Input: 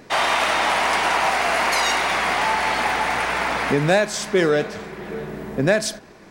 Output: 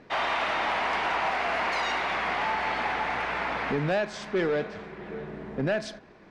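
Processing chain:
gain into a clipping stage and back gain 14 dB
low-pass filter 3,500 Hz 12 dB per octave
level −7 dB

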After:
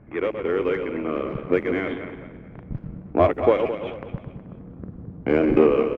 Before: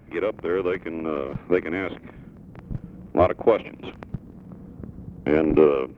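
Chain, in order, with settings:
feedback delay that plays each chunk backwards 108 ms, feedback 60%, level −7 dB
low-pass that shuts in the quiet parts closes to 1,800 Hz, open at −15.5 dBFS
on a send: echo with shifted repeats 342 ms, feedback 31%, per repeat +43 Hz, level −22.5 dB

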